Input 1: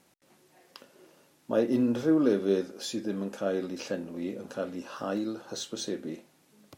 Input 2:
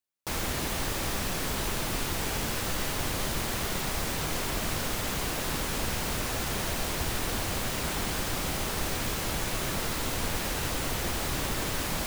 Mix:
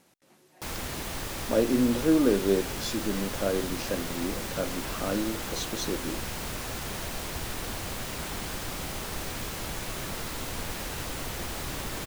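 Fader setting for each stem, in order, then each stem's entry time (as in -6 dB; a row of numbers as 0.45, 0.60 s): +1.5, -4.0 dB; 0.00, 0.35 s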